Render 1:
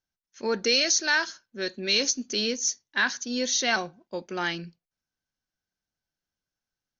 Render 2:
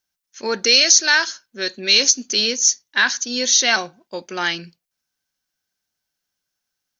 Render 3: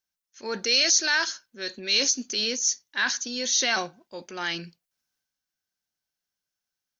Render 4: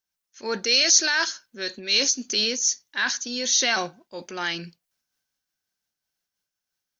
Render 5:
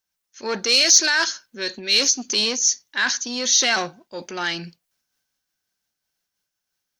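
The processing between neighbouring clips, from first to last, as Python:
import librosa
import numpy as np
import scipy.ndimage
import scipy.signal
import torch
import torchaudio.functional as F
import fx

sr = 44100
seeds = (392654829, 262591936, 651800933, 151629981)

y1 = fx.tilt_eq(x, sr, slope=2.0)
y1 = y1 * 10.0 ** (6.0 / 20.0)
y2 = fx.transient(y1, sr, attack_db=-3, sustain_db=5)
y2 = y2 * 10.0 ** (-7.5 / 20.0)
y3 = fx.am_noise(y2, sr, seeds[0], hz=5.7, depth_pct=50)
y3 = y3 * 10.0 ** (5.0 / 20.0)
y4 = fx.transformer_sat(y3, sr, knee_hz=3400.0)
y4 = y4 * 10.0 ** (4.0 / 20.0)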